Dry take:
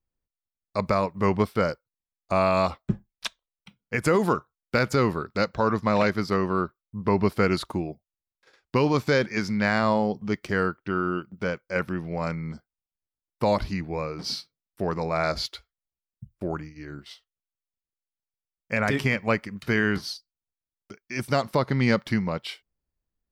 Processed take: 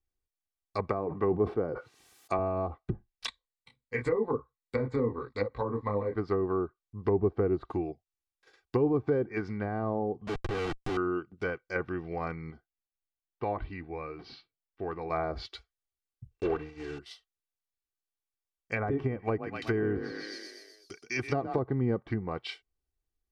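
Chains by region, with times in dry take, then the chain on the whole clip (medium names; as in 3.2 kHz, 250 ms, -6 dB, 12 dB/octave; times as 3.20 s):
0.88–2.39 s: high-pass 130 Hz + decay stretcher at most 48 dB/s
3.26–6.16 s: rippled EQ curve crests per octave 1, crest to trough 12 dB + detune thickener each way 32 cents
10.27–10.97 s: low-pass 1.3 kHz + Schmitt trigger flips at -41.5 dBFS
12.50–15.10 s: low-pass 3.3 kHz 24 dB/octave + flange 1.1 Hz, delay 2.4 ms, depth 1.6 ms, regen +86%
16.31–17.00 s: block-companded coder 3-bit + distance through air 100 m + small resonant body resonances 450/2700 Hz, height 15 dB, ringing for 90 ms
19.19–21.59 s: treble shelf 2.7 kHz +9.5 dB + frequency-shifting echo 124 ms, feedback 59%, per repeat +31 Hz, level -9.5 dB
whole clip: low-pass that closes with the level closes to 600 Hz, closed at -19.5 dBFS; comb 2.6 ms, depth 59%; trim -4.5 dB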